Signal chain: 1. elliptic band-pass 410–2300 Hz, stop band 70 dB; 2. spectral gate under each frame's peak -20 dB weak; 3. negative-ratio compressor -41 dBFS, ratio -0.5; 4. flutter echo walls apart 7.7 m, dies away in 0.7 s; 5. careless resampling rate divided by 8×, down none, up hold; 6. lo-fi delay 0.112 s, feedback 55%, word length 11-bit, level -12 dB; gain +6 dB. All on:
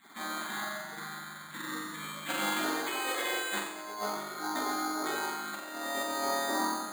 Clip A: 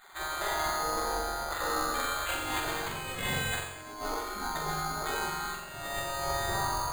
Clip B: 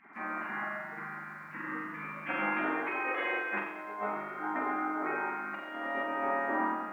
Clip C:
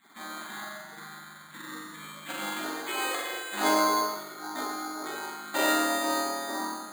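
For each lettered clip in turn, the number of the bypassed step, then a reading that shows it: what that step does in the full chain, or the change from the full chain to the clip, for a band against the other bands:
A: 1, 125 Hz band +11.5 dB; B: 5, 4 kHz band -16.0 dB; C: 3, crest factor change +4.0 dB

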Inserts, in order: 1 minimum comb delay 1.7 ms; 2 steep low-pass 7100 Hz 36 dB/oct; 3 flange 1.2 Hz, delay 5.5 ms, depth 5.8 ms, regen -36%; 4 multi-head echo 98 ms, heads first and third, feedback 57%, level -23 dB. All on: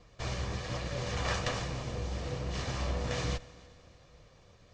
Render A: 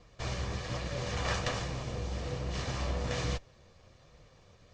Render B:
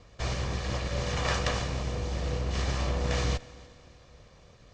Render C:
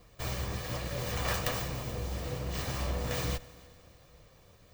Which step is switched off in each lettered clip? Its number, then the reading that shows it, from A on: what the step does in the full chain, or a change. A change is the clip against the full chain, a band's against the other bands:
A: 4, echo-to-direct -18.5 dB to none; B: 3, loudness change +4.5 LU; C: 2, 8 kHz band +2.5 dB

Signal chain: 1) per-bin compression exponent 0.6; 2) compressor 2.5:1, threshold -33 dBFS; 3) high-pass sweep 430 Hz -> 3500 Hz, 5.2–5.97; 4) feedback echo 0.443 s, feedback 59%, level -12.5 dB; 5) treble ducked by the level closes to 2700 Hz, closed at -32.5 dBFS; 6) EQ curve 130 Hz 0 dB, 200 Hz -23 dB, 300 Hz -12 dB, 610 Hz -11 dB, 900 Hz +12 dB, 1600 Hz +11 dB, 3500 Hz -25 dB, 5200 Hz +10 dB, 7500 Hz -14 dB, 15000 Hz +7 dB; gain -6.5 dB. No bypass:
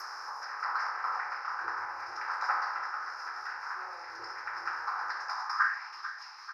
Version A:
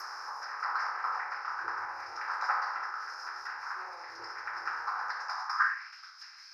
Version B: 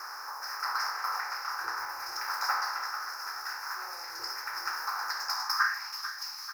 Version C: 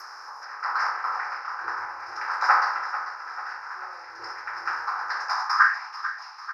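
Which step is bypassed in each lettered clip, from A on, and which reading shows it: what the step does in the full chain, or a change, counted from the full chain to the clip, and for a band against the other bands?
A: 4, momentary loudness spread change +2 LU; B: 5, 4 kHz band +11.0 dB; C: 2, mean gain reduction 4.0 dB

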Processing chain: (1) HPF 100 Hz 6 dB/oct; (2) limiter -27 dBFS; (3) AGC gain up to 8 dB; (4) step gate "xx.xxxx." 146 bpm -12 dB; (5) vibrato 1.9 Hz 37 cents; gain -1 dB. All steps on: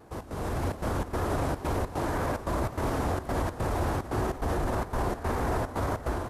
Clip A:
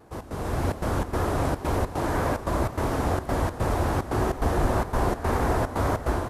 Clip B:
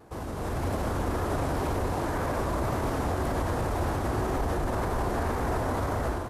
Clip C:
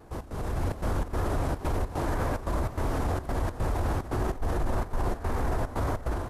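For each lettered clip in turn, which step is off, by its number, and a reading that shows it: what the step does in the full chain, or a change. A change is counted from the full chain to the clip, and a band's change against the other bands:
2, mean gain reduction 4.0 dB; 4, momentary loudness spread change -1 LU; 1, 125 Hz band +3.5 dB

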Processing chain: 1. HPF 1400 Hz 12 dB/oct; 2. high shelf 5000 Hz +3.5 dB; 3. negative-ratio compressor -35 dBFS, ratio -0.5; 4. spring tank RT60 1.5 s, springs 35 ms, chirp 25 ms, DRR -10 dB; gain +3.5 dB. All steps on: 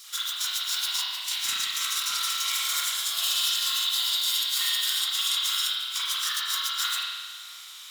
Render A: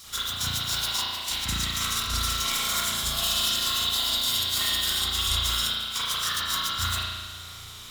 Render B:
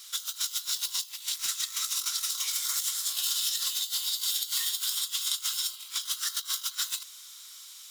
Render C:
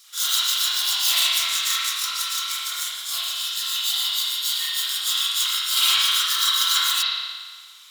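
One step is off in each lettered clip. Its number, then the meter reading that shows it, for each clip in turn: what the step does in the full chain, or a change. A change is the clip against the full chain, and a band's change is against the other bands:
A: 1, 1 kHz band +4.0 dB; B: 4, crest factor change +2.5 dB; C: 3, momentary loudness spread change +3 LU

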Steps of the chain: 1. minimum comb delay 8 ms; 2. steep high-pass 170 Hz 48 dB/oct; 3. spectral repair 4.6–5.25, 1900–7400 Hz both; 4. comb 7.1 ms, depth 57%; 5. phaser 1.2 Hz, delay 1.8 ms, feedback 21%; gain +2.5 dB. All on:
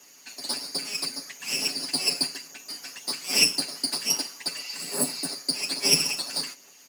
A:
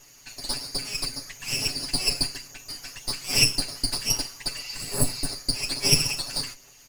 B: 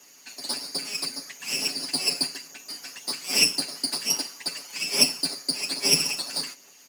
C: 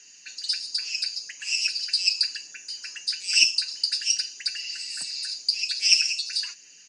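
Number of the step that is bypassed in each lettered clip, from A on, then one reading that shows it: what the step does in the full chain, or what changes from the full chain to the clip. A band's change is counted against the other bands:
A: 2, 125 Hz band +12.0 dB; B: 3, crest factor change +2.0 dB; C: 1, loudness change +2.0 LU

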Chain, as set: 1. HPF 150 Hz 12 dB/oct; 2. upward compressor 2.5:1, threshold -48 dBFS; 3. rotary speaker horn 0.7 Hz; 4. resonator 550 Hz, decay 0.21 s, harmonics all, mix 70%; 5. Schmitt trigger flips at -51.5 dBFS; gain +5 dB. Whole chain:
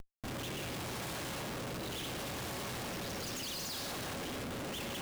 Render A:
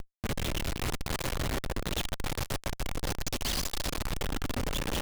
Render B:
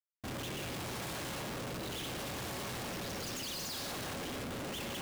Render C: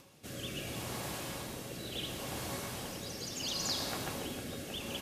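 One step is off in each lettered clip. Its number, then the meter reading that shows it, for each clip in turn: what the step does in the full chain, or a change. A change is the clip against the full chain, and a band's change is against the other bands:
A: 1, 125 Hz band +3.5 dB; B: 2, crest factor change -4.0 dB; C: 5, distortion 0 dB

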